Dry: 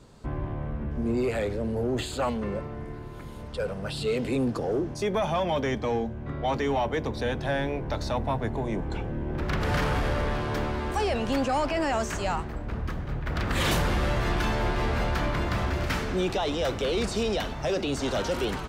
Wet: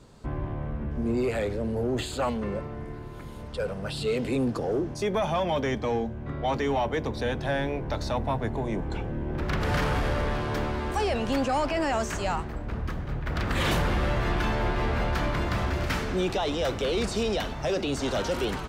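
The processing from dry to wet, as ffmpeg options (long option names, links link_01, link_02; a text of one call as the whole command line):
ffmpeg -i in.wav -filter_complex "[0:a]asettb=1/sr,asplit=3[link_01][link_02][link_03];[link_01]atrim=end=13.534[link_04];[link_02]atrim=start=13.53:end=15.13,asetpts=PTS-STARTPTS,afade=type=in:duration=0.004:curve=qsin,afade=type=out:start_time=1.596:duration=0.004:curve=qsin,bass=frequency=250:gain=0,treble=frequency=4000:gain=-5[link_05];[link_03]atrim=start=15.126[link_06];[link_04][link_05]acrossfade=duration=0.004:curve1=hsin:curve2=qsin[link_07];[link_07][link_06]acrossfade=duration=0.004:curve1=qsin:curve2=hsin" out.wav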